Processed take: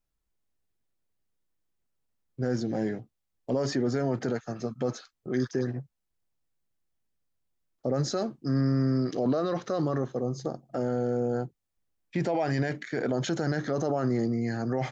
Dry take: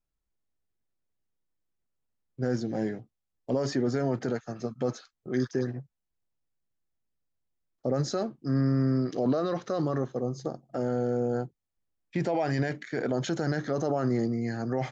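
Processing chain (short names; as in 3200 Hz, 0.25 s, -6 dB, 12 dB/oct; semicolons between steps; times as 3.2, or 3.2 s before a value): 8.16–9.11 dynamic EQ 5900 Hz, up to +5 dB, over -59 dBFS, Q 1; in parallel at -1 dB: limiter -25.5 dBFS, peak gain reduction 9 dB; on the sum: gain -3 dB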